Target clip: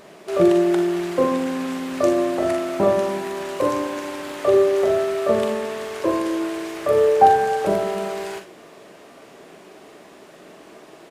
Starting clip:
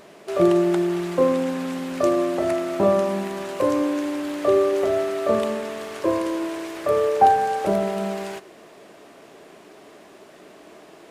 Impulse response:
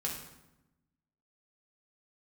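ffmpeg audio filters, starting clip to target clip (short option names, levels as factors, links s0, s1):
-filter_complex "[0:a]aecho=1:1:43|59:0.447|0.282,asplit=2[s0][s1];[1:a]atrim=start_sample=2205[s2];[s1][s2]afir=irnorm=-1:irlink=0,volume=0.158[s3];[s0][s3]amix=inputs=2:normalize=0"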